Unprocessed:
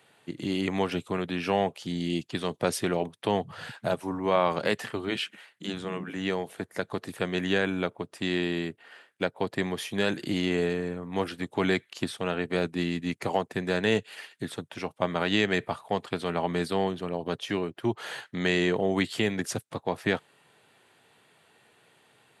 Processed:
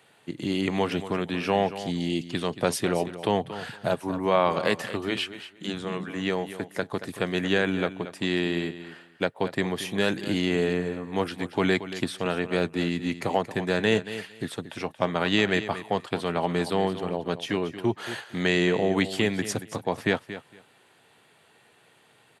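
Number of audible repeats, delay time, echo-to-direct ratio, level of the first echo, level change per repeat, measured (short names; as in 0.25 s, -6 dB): 2, 0.229 s, -13.0 dB, -13.0 dB, -15.5 dB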